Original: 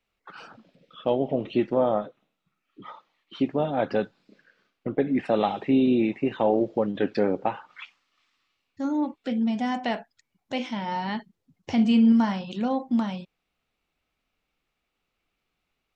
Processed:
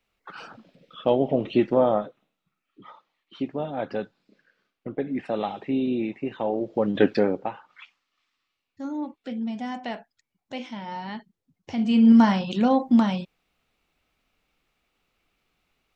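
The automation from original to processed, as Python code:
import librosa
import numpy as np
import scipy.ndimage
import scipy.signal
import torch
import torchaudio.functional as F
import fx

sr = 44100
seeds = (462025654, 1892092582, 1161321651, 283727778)

y = fx.gain(x, sr, db=fx.line((1.76, 3.0), (2.89, -4.5), (6.62, -4.5), (7.01, 7.0), (7.51, -5.0), (11.77, -5.0), (12.19, 6.0)))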